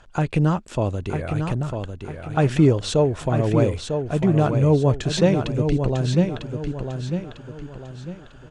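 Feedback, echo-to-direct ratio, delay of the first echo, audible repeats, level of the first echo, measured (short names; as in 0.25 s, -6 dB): 38%, -6.0 dB, 0.949 s, 4, -6.5 dB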